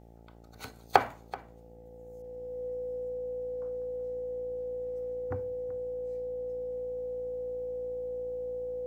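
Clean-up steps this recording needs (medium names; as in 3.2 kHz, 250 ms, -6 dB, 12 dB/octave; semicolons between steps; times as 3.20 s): de-hum 57.1 Hz, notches 15; band-stop 500 Hz, Q 30; inverse comb 381 ms -18 dB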